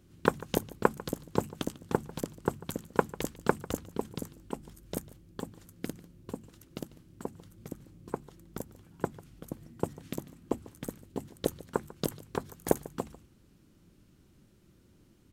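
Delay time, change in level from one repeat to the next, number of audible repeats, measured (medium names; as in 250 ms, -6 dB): 146 ms, no regular repeats, 1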